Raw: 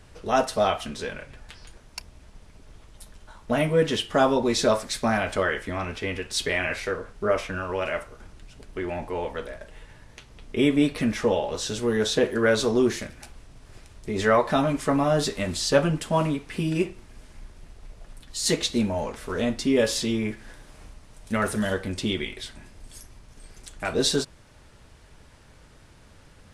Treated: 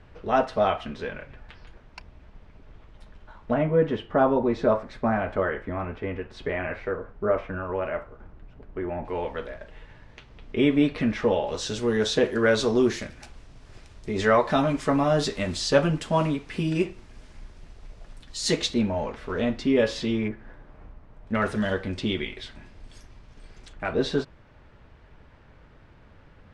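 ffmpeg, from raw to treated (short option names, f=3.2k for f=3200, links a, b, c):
-af "asetnsamples=n=441:p=0,asendcmd='3.54 lowpass f 1400;9.05 lowpass f 3500;11.47 lowpass f 6500;18.74 lowpass f 3400;20.28 lowpass f 1500;21.35 lowpass f 4000;23.73 lowpass f 2400',lowpass=2.6k"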